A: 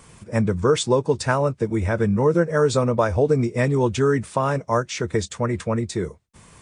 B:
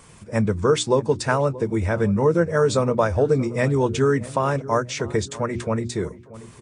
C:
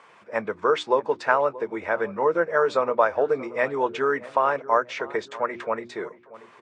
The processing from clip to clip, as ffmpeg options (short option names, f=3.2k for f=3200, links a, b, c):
-filter_complex "[0:a]bandreject=f=60:t=h:w=6,bandreject=f=120:t=h:w=6,bandreject=f=180:t=h:w=6,bandreject=f=240:t=h:w=6,bandreject=f=300:t=h:w=6,bandreject=f=360:t=h:w=6,asplit=2[a][b];[b]adelay=631,lowpass=f=1.1k:p=1,volume=-17dB,asplit=2[c][d];[d]adelay=631,lowpass=f=1.1k:p=1,volume=0.43,asplit=2[e][f];[f]adelay=631,lowpass=f=1.1k:p=1,volume=0.43,asplit=2[g][h];[h]adelay=631,lowpass=f=1.1k:p=1,volume=0.43[i];[a][c][e][g][i]amix=inputs=5:normalize=0"
-af "highpass=630,lowpass=2.2k,volume=3.5dB"